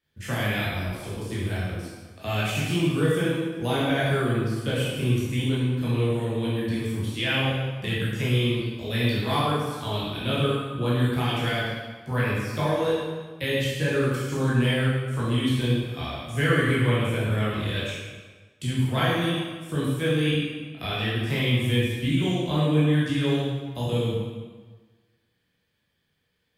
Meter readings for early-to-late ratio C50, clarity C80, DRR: -2.0 dB, 1.0 dB, -8.5 dB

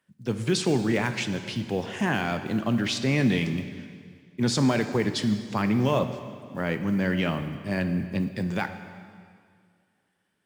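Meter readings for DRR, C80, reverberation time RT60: 8.5 dB, 10.5 dB, 2.1 s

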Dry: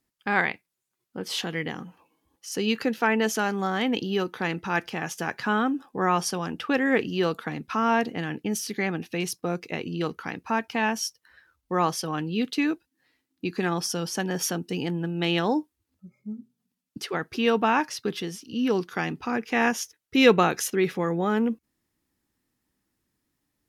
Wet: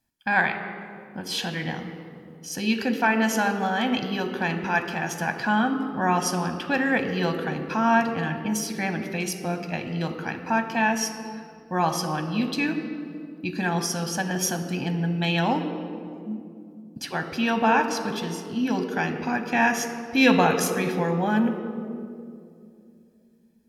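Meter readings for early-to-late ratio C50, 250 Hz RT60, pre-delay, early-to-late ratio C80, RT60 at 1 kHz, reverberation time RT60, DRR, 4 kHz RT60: 8.5 dB, 3.4 s, 9 ms, 9.5 dB, 2.1 s, 2.5 s, 6.5 dB, 1.3 s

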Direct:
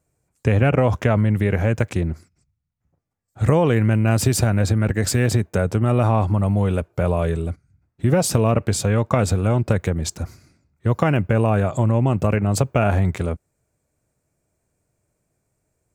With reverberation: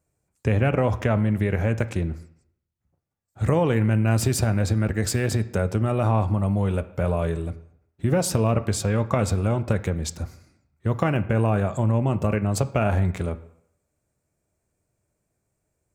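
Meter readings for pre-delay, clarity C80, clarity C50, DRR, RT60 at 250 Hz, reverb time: 4 ms, 18.5 dB, 16.0 dB, 11.5 dB, 0.65 s, 0.70 s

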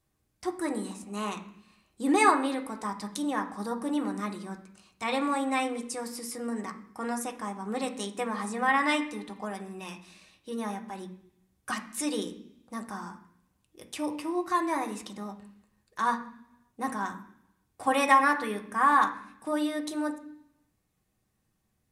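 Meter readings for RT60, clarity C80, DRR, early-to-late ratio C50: 0.70 s, 15.0 dB, 2.0 dB, 11.5 dB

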